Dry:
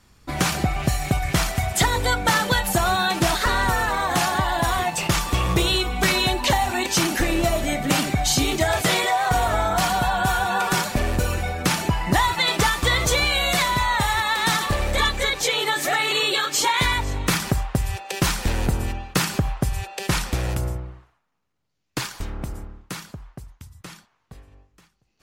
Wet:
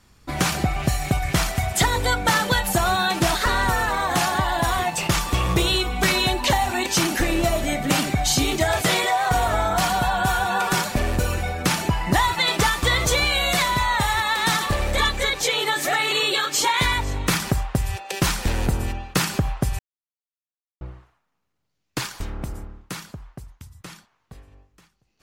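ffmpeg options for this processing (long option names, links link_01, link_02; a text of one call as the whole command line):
ffmpeg -i in.wav -filter_complex "[0:a]asplit=3[link_01][link_02][link_03];[link_01]atrim=end=19.79,asetpts=PTS-STARTPTS,afade=type=out:start_time=19.786:duration=0.004:curve=hsin[link_04];[link_02]atrim=start=19.79:end=20.81,asetpts=PTS-STARTPTS,volume=0[link_05];[link_03]atrim=start=20.81,asetpts=PTS-STARTPTS,afade=type=in:duration=0.004:curve=hsin[link_06];[link_04][link_05][link_06]concat=n=3:v=0:a=1" out.wav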